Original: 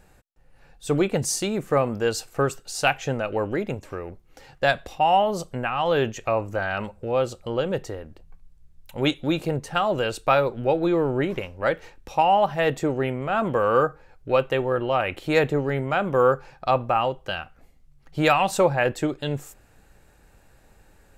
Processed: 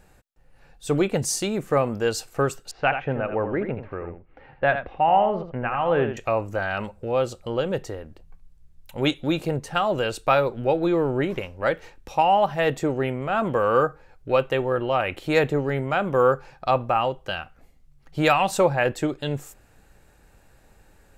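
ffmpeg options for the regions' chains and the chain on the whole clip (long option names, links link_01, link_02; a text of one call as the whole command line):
ffmpeg -i in.wav -filter_complex "[0:a]asettb=1/sr,asplit=3[link_01][link_02][link_03];[link_01]atrim=end=2.714[link_04];[link_02]atrim=start=2.71:end=6.17,asetpts=PTS-STARTPTS,afade=type=in:duration=0.004:curve=qsin,afade=type=out:start_time=3.456:duration=0.004:curve=qsin,lowpass=frequency=2400:width=0.5412,lowpass=frequency=2400:width=1.3066,aecho=1:1:82:0.376,atrim=end_sample=152586[link_05];[link_03]atrim=start=6.166[link_06];[link_04][link_05]acrossfade=duration=0.004:curve1=hsin:curve2=qsin[link_07];[link_07][link_06]acrossfade=duration=0.004:curve1=qsin:curve2=hsin" out.wav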